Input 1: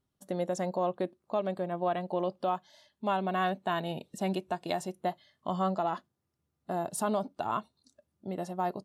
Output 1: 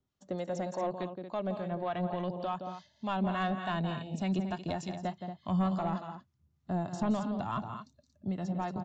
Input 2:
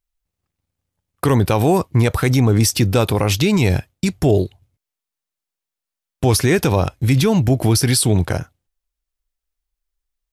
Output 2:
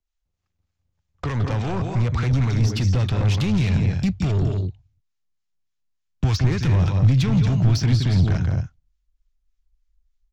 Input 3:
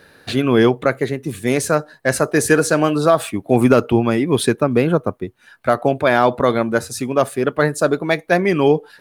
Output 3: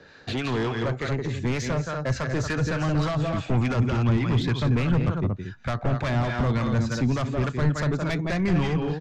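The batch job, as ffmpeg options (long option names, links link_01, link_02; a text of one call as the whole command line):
ffmpeg -i in.wav -filter_complex "[0:a]aecho=1:1:169.1|230.3:0.355|0.282,acrossover=split=130|850|5200[link_01][link_02][link_03][link_04];[link_01]acompressor=threshold=-29dB:ratio=4[link_05];[link_02]acompressor=threshold=-20dB:ratio=4[link_06];[link_03]acompressor=threshold=-24dB:ratio=4[link_07];[link_04]acompressor=threshold=-42dB:ratio=4[link_08];[link_05][link_06][link_07][link_08]amix=inputs=4:normalize=0,aresample=16000,volume=16.5dB,asoftclip=hard,volume=-16.5dB,aresample=44100,acrossover=split=900[link_09][link_10];[link_09]aeval=exprs='val(0)*(1-0.5/2+0.5/2*cos(2*PI*3.4*n/s))':channel_layout=same[link_11];[link_10]aeval=exprs='val(0)*(1-0.5/2-0.5/2*cos(2*PI*3.4*n/s))':channel_layout=same[link_12];[link_11][link_12]amix=inputs=2:normalize=0,asoftclip=type=tanh:threshold=-21dB,asubboost=boost=6:cutoff=170" out.wav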